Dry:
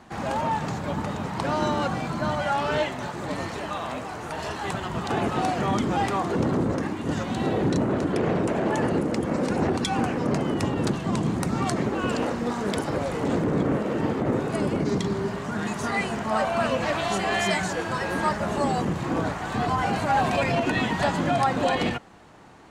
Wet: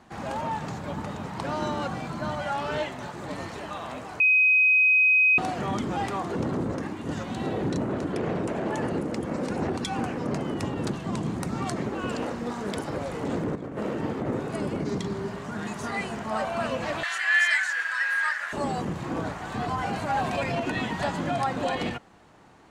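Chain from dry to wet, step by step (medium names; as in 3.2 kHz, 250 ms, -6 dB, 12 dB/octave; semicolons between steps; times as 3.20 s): 4.20–5.38 s: bleep 2.52 kHz -11.5 dBFS; 13.55–13.96 s: compressor with a negative ratio -27 dBFS, ratio -0.5; 17.03–18.53 s: resonant high-pass 1.7 kHz, resonance Q 5.3; trim -4.5 dB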